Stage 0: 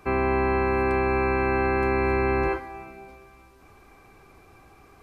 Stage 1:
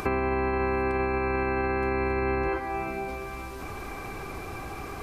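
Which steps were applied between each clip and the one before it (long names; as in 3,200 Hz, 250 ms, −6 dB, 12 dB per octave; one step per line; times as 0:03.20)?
in parallel at +2.5 dB: upward compression, threshold −29 dBFS
on the sum: brickwall limiter −11.5 dBFS, peak gain reduction 6 dB
downward compressor 5 to 1, threshold −24 dBFS, peak gain reduction 7.5 dB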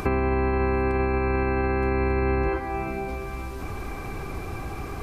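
low-shelf EQ 260 Hz +8 dB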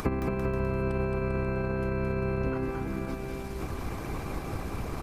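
harmonic and percussive parts rebalanced harmonic −14 dB
transient designer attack 0 dB, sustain −7 dB
bouncing-ball delay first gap 220 ms, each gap 0.8×, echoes 5
level +3 dB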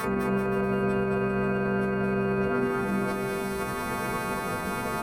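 every partial snapped to a pitch grid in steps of 2 semitones
brickwall limiter −26 dBFS, peak gain reduction 9.5 dB
convolution reverb RT60 0.25 s, pre-delay 3 ms, DRR 3 dB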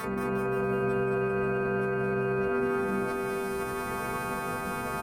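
repeating echo 176 ms, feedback 46%, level −8 dB
level −4.5 dB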